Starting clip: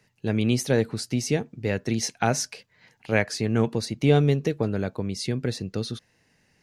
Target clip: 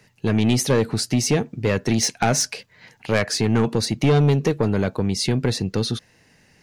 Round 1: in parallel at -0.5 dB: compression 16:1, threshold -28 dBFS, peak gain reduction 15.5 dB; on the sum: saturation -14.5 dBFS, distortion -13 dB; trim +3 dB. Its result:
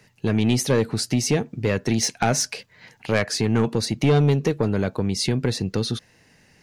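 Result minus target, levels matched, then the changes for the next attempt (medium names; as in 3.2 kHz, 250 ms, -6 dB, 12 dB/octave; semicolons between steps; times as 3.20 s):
compression: peak gain reduction +8 dB
change: compression 16:1, threshold -19.5 dBFS, peak gain reduction 7.5 dB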